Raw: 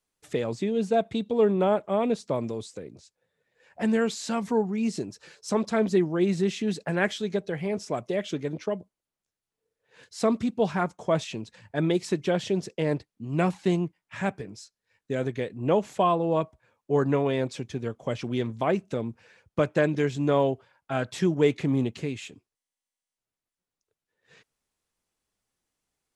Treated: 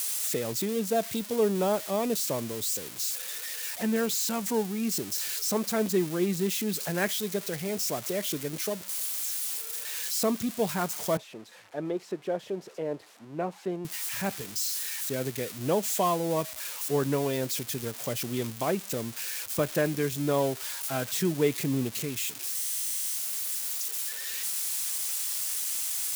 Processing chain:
spike at every zero crossing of −20.5 dBFS
0:11.17–0:13.85: resonant band-pass 600 Hz, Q 0.96
level −3.5 dB

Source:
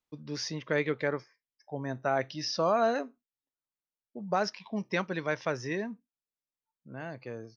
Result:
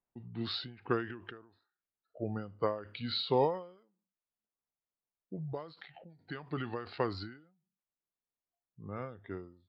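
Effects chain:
change of speed 0.781×
low-pass that shuts in the quiet parts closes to 1,300 Hz, open at −27 dBFS
every ending faded ahead of time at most 110 dB per second

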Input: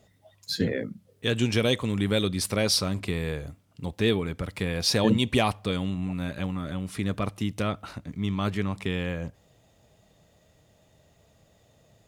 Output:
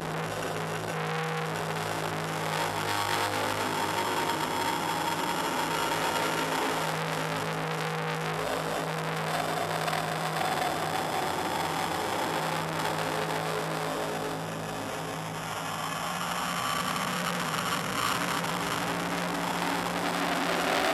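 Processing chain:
hold until the input has moved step −41.5 dBFS
high-pass filter 980 Hz 12 dB per octave
high-shelf EQ 4,000 Hz −8.5 dB
in parallel at +3 dB: output level in coarse steps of 13 dB
on the sum: extreme stretch with random phases 11×, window 0.25 s, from 0:06.08
upward compression, threshold −40 dBFS
feedback delay network reverb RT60 1 s, low-frequency decay 1.2×, high-frequency decay 0.35×, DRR −9.5 dB
bad sample-rate conversion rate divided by 6×, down filtered, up hold
wrong playback speed 78 rpm record played at 45 rpm
saturating transformer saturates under 3,400 Hz
level +6.5 dB

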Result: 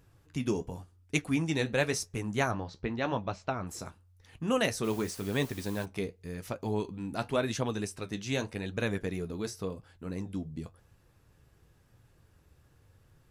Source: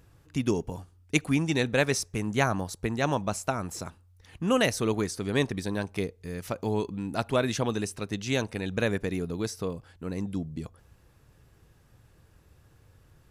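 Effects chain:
0:02.51–0:03.67: low-pass filter 4,500 Hz 24 dB per octave
flanger 0.91 Hz, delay 6.9 ms, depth 8.2 ms, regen −54%
0:04.83–0:05.84: background noise white −51 dBFS

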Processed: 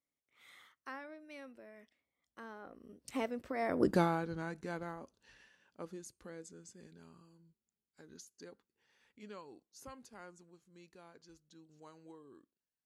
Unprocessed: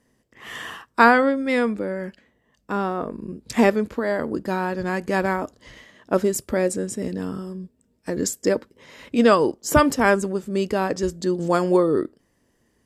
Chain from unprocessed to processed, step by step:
source passing by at 0:03.90, 41 m/s, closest 3.2 metres
one half of a high-frequency compander encoder only

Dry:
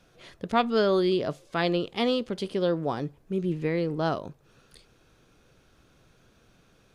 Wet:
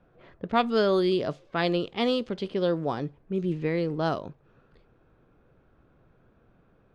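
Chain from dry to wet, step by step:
low-pass that shuts in the quiet parts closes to 1,300 Hz, open at −20.5 dBFS

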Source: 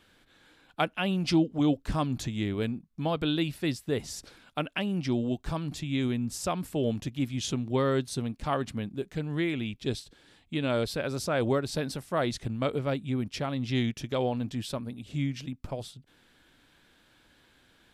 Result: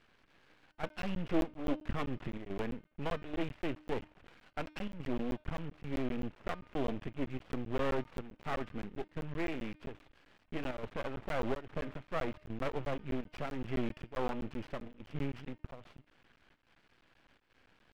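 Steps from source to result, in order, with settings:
variable-slope delta modulation 16 kbit/s
half-wave rectification
square-wave tremolo 1.2 Hz, depth 65%, duty 85%
hum removal 305.2 Hz, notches 18
regular buffer underruns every 0.13 s, samples 512, zero, from 0:00.89
level −1.5 dB

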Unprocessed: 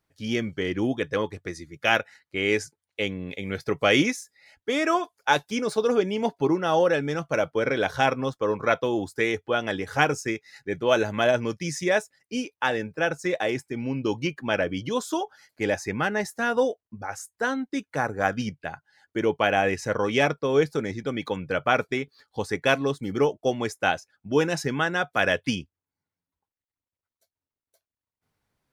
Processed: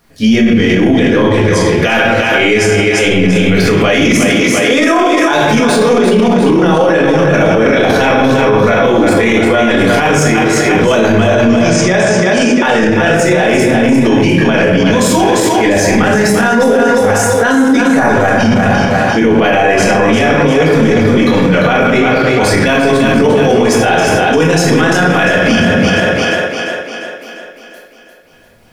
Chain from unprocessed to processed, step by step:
0:11.27–0:12.48: low-pass filter 8,100 Hz 24 dB per octave
transient designer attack −5 dB, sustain +5 dB
echo with a time of its own for lows and highs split 320 Hz, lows 105 ms, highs 348 ms, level −7 dB
rectangular room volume 290 cubic metres, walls mixed, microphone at 1.8 metres
boost into a limiter +23.5 dB
level −1 dB

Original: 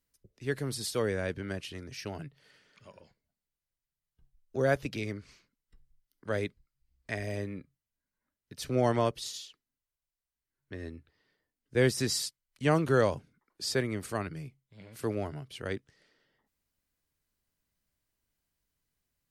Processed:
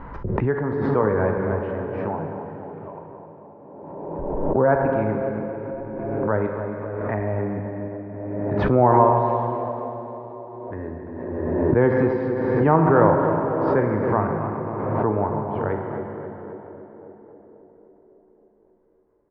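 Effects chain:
low-pass filter 1,500 Hz 24 dB per octave
parametric band 910 Hz +13 dB 0.48 octaves
in parallel at −1 dB: brickwall limiter −17.5 dBFS, peak gain reduction 9 dB
on the sum: double-tracking delay 19 ms −13.5 dB
on a send: tape delay 272 ms, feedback 81%, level −7 dB, low-pass 1,100 Hz
on the sum: four-comb reverb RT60 3 s, combs from 33 ms, DRR 3 dB
background raised ahead of every attack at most 28 dB per second
level +2 dB

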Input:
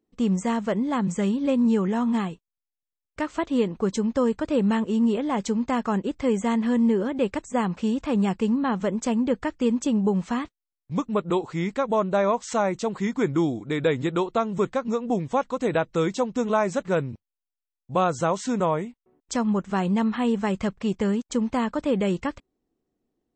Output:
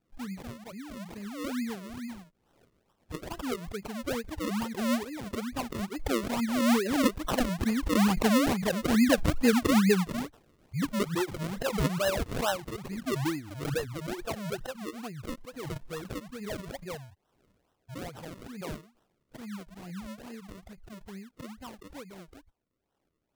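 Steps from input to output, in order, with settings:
spectral dynamics exaggerated over time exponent 2
source passing by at 0:08.84, 8 m/s, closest 11 metres
tilt shelving filter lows −4 dB, about 660 Hz
reversed playback
upward compression, threshold −59 dBFS
reversed playback
rotating-speaker cabinet horn 7.5 Hz, later 0.7 Hz, at 0:14.44
sample-and-hold swept by an LFO 38×, swing 100% 2.3 Hz
background raised ahead of every attack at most 53 dB per second
level +8 dB

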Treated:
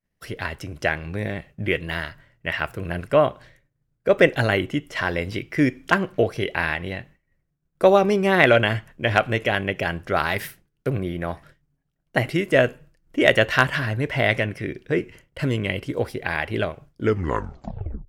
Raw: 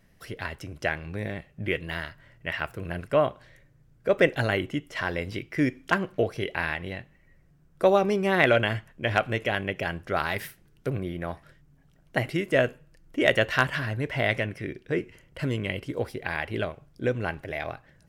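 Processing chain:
turntable brake at the end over 1.13 s
downward expander −46 dBFS
level +5 dB

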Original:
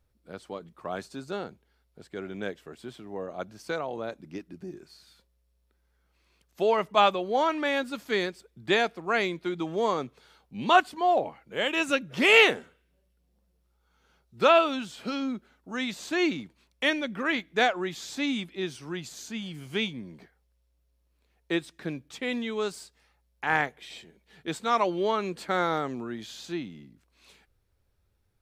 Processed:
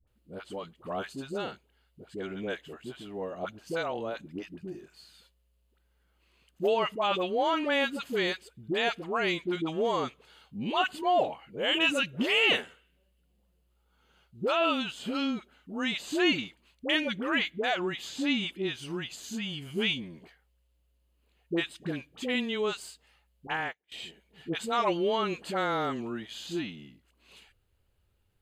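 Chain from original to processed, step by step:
brickwall limiter −17.5 dBFS, peak gain reduction 11 dB
parametric band 2,900 Hz +10 dB 0.21 octaves
notch filter 5,600 Hz, Q 6.4
all-pass dispersion highs, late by 74 ms, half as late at 650 Hz
0:18.09–0:18.49: high-shelf EQ 8,800 Hz −9.5 dB
0:23.47–0:23.92: expander for the loud parts 2.5 to 1, over −49 dBFS

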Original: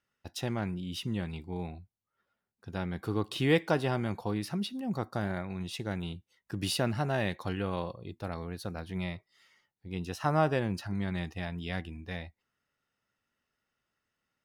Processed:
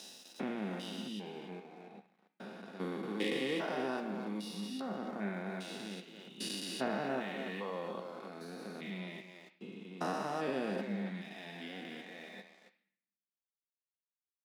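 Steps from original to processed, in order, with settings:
spectrum averaged block by block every 400 ms
reverb reduction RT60 2 s
double-tracking delay 15 ms −12 dB
far-end echo of a speakerphone 280 ms, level −7 dB
in parallel at +2 dB: downward compressor, threshold −49 dBFS, peak gain reduction 18 dB
on the sum: low-pass filter 10,000 Hz 12 dB per octave
high-shelf EQ 7,100 Hz +7 dB
dead-zone distortion −58.5 dBFS
Chebyshev high-pass filter 190 Hz, order 4
on a send at −7.5 dB: tilt shelving filter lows −7.5 dB, about 1,300 Hz + convolution reverb RT60 0.65 s, pre-delay 3 ms

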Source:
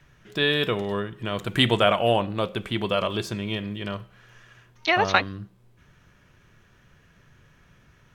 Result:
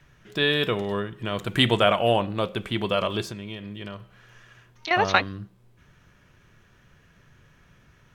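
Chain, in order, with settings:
0:03.22–0:04.91: downward compressor 6 to 1, threshold −33 dBFS, peak gain reduction 14.5 dB

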